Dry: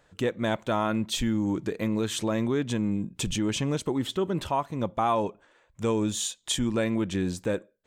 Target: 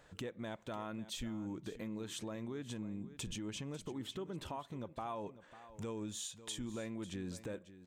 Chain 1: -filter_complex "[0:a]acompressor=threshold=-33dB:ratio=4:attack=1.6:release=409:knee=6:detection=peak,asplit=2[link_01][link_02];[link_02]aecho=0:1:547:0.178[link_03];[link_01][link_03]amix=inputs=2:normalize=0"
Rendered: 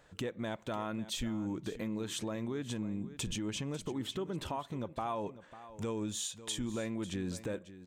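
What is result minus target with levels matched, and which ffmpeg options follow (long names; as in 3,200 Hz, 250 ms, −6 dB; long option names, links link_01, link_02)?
downward compressor: peak gain reduction −5.5 dB
-filter_complex "[0:a]acompressor=threshold=-40.5dB:ratio=4:attack=1.6:release=409:knee=6:detection=peak,asplit=2[link_01][link_02];[link_02]aecho=0:1:547:0.178[link_03];[link_01][link_03]amix=inputs=2:normalize=0"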